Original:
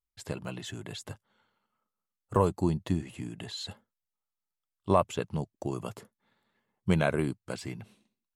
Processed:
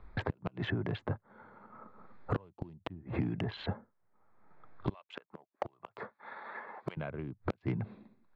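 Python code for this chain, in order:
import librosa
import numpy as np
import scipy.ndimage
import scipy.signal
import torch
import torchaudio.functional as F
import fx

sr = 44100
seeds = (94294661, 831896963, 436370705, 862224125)

y = fx.wiener(x, sr, points=15)
y = scipy.signal.sosfilt(scipy.signal.butter(4, 3200.0, 'lowpass', fs=sr, output='sos'), y)
y = fx.gate_flip(y, sr, shuts_db=-24.0, range_db=-38)
y = 10.0 ** (-28.0 / 20.0) * np.tanh(y / 10.0 ** (-28.0 / 20.0))
y = fx.highpass(y, sr, hz=790.0, slope=12, at=(4.94, 6.97))
y = fx.band_squash(y, sr, depth_pct=100)
y = y * librosa.db_to_amplitude(10.5)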